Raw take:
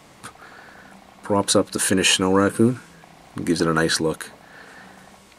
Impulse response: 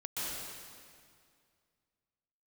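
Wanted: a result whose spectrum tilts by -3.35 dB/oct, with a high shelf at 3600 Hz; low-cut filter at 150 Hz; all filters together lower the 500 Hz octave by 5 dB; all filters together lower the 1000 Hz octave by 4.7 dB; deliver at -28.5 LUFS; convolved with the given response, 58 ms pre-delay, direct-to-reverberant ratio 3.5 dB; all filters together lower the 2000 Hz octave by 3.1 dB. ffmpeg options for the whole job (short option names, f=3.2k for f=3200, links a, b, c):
-filter_complex "[0:a]highpass=150,equalizer=f=500:t=o:g=-5,equalizer=f=1k:t=o:g=-4,equalizer=f=2k:t=o:g=-5,highshelf=f=3.6k:g=7.5,asplit=2[a][b];[1:a]atrim=start_sample=2205,adelay=58[c];[b][c]afir=irnorm=-1:irlink=0,volume=-7.5dB[d];[a][d]amix=inputs=2:normalize=0,volume=-10.5dB"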